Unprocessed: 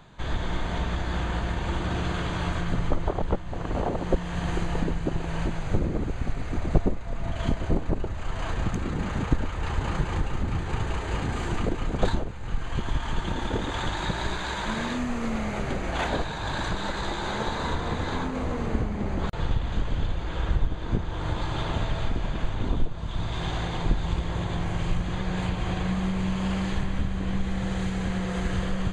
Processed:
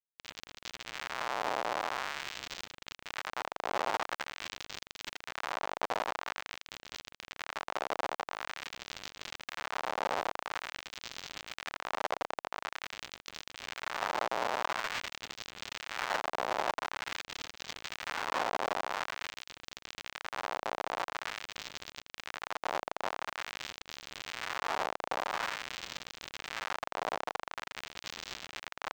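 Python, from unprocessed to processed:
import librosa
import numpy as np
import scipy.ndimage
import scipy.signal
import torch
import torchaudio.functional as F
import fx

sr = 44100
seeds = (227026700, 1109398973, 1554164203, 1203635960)

p1 = fx.low_shelf(x, sr, hz=120.0, db=9.0)
p2 = fx.notch(p1, sr, hz=2300.0, q=6.4)
p3 = p2 + fx.echo_feedback(p2, sr, ms=82, feedback_pct=30, wet_db=-3, dry=0)
p4 = fx.schmitt(p3, sr, flips_db=-23.5)
p5 = fx.filter_lfo_highpass(p4, sr, shape='sine', hz=0.47, low_hz=700.0, high_hz=4000.0, q=1.1)
p6 = fx.dynamic_eq(p5, sr, hz=760.0, q=0.88, threshold_db=-47.0, ratio=4.0, max_db=5)
p7 = np.interp(np.arange(len(p6)), np.arange(len(p6))[::4], p6[::4])
y = F.gain(torch.from_numpy(p7), -6.5).numpy()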